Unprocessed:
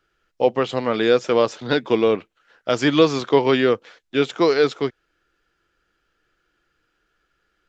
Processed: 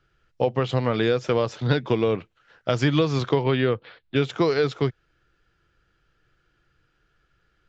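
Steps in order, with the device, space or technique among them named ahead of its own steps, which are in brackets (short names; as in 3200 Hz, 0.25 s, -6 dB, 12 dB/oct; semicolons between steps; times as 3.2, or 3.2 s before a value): jukebox (LPF 6700 Hz 12 dB/oct; resonant low shelf 170 Hz +6.5 dB, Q 1.5; compressor 5:1, threshold -19 dBFS, peak gain reduction 9 dB); 3.43–4.16 steep low-pass 4500 Hz 48 dB/oct; bell 140 Hz +4.5 dB 2 oct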